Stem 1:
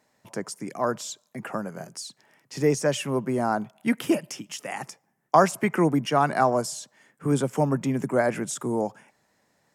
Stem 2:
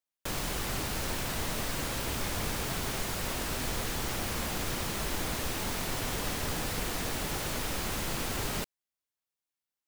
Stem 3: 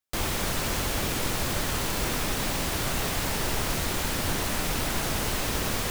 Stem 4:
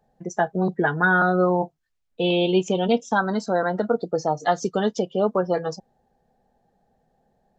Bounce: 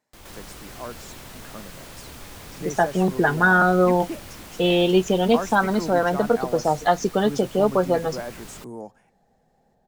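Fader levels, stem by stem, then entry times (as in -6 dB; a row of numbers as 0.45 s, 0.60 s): -10.5 dB, -9.0 dB, -18.5 dB, +2.0 dB; 0.00 s, 0.00 s, 0.00 s, 2.40 s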